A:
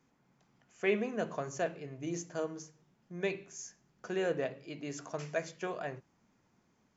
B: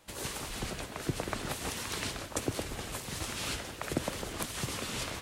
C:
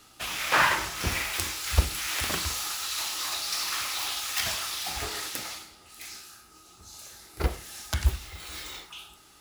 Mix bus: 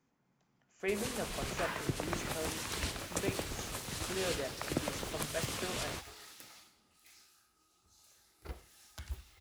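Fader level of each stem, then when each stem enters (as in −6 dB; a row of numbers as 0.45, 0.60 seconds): −5.0, −2.5, −18.5 decibels; 0.00, 0.80, 1.05 seconds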